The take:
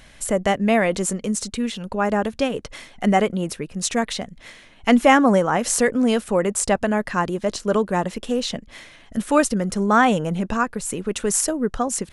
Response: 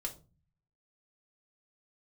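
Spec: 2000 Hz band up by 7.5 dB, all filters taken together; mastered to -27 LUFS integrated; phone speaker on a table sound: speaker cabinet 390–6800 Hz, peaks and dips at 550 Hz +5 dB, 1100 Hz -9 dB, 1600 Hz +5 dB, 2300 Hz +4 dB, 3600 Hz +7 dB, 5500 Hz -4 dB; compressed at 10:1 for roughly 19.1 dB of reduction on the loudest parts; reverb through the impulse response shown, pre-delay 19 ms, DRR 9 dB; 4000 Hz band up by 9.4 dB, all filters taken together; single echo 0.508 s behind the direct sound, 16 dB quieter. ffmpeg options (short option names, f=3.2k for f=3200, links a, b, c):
-filter_complex "[0:a]equalizer=f=2k:t=o:g=3.5,equalizer=f=4k:t=o:g=6.5,acompressor=threshold=-28dB:ratio=10,aecho=1:1:508:0.158,asplit=2[a][b];[1:a]atrim=start_sample=2205,adelay=19[c];[b][c]afir=irnorm=-1:irlink=0,volume=-8.5dB[d];[a][d]amix=inputs=2:normalize=0,highpass=f=390:w=0.5412,highpass=f=390:w=1.3066,equalizer=f=550:t=q:w=4:g=5,equalizer=f=1.1k:t=q:w=4:g=-9,equalizer=f=1.6k:t=q:w=4:g=5,equalizer=f=2.3k:t=q:w=4:g=4,equalizer=f=3.6k:t=q:w=4:g=7,equalizer=f=5.5k:t=q:w=4:g=-4,lowpass=f=6.8k:w=0.5412,lowpass=f=6.8k:w=1.3066,volume=5dB"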